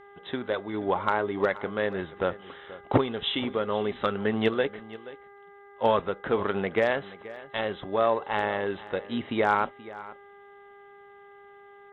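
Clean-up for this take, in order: de-hum 402.4 Hz, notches 5; interpolate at 7.36 s, 3.2 ms; inverse comb 479 ms -17.5 dB

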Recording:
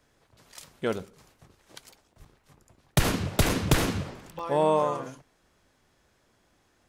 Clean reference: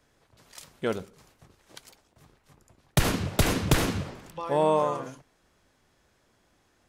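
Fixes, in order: 2.18–2.30 s: high-pass 140 Hz 24 dB/octave; interpolate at 2.25/2.65/3.49/4.39 s, 4.3 ms

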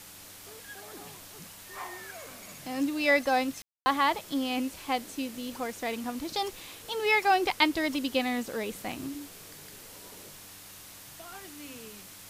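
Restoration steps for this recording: de-hum 98.1 Hz, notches 3; room tone fill 3.62–3.86 s; noise reduction 26 dB, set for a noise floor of -48 dBFS

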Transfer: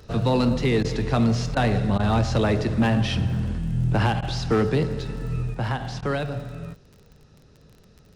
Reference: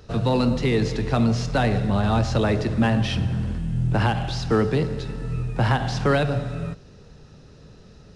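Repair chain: clip repair -13.5 dBFS; de-click; interpolate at 0.83/1.55/1.98/4.21/6.01 s, 13 ms; gain correction +6 dB, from 5.54 s

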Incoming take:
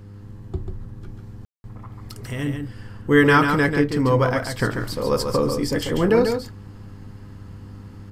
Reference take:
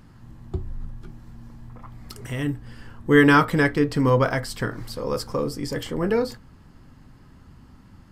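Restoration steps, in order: de-hum 100.9 Hz, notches 5; room tone fill 1.45–1.64 s; inverse comb 141 ms -6 dB; trim 0 dB, from 4.59 s -4.5 dB

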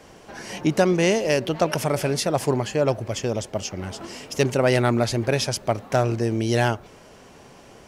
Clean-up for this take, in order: clip repair -9 dBFS

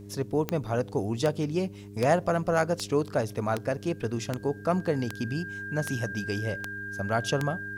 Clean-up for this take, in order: de-click; de-hum 101.1 Hz, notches 4; band-stop 1.6 kHz, Q 30

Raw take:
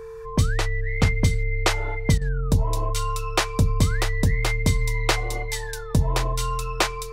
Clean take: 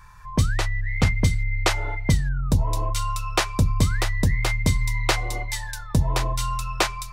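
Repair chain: band-stop 450 Hz, Q 30; interpolate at 2.18 s, 32 ms

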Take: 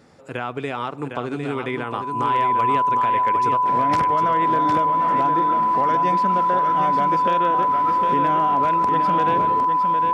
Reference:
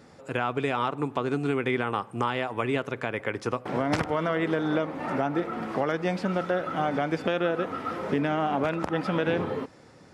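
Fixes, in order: clip repair -10.5 dBFS; band-stop 1 kHz, Q 30; inverse comb 757 ms -6 dB

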